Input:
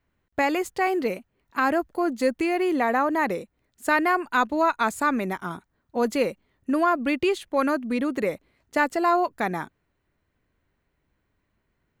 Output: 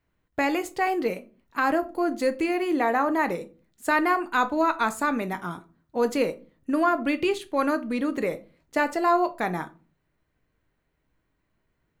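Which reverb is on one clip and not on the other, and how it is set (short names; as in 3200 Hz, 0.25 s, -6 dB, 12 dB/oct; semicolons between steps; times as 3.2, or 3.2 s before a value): shoebox room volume 190 m³, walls furnished, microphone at 0.53 m; gain -1.5 dB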